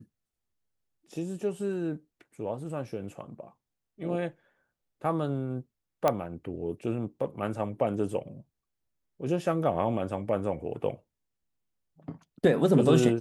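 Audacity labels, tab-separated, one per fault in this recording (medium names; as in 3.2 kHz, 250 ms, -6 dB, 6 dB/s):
6.080000	6.080000	pop -11 dBFS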